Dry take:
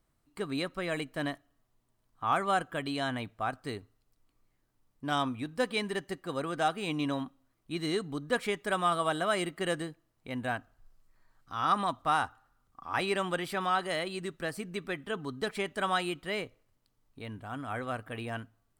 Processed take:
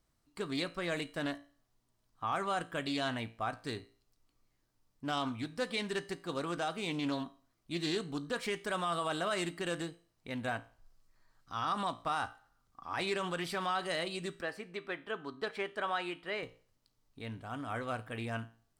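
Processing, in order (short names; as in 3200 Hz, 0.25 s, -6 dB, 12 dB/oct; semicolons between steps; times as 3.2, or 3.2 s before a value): 14.41–16.43 tone controls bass -12 dB, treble -14 dB; limiter -22.5 dBFS, peak gain reduction 7 dB; bell 5200 Hz +6 dB 1.1 oct; resonator 57 Hz, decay 0.4 s, harmonics all, mix 50%; Doppler distortion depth 0.17 ms; gain +1.5 dB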